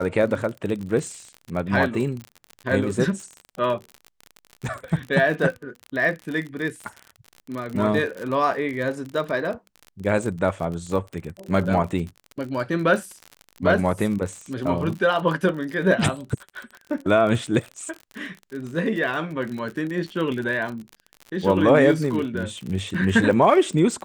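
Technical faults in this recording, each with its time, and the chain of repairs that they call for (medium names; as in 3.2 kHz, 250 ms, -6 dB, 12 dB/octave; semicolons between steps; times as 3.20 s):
crackle 47 per s -29 dBFS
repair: de-click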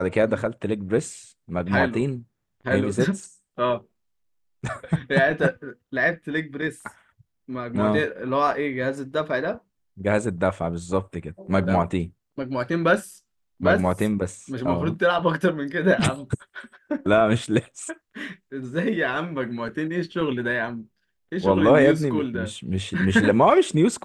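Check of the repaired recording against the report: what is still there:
nothing left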